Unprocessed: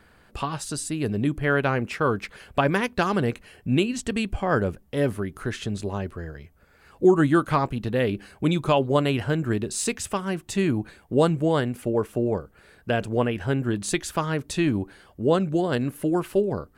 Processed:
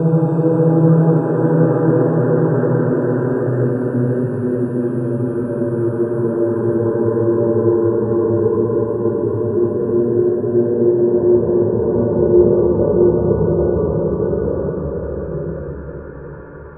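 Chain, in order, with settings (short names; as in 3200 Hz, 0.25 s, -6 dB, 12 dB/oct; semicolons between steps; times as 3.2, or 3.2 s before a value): reverse; compressor 4:1, threshold -35 dBFS, peak gain reduction 19 dB; reverse; loudest bins only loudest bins 32; delay with a stepping band-pass 0.286 s, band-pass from 1400 Hz, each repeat 0.7 oct, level -7 dB; Paulstretch 14×, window 0.50 s, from 11.42; reverb RT60 0.60 s, pre-delay 3 ms, DRR 4 dB; gain +4.5 dB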